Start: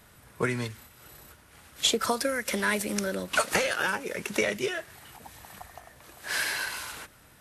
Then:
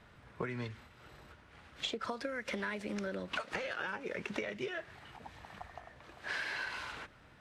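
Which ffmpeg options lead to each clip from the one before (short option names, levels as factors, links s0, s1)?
-af "lowpass=3400,acompressor=threshold=0.0251:ratio=10,volume=0.75"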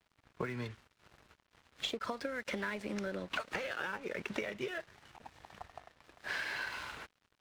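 -af "aeval=exprs='sgn(val(0))*max(abs(val(0))-0.00178,0)':c=same,volume=1.12"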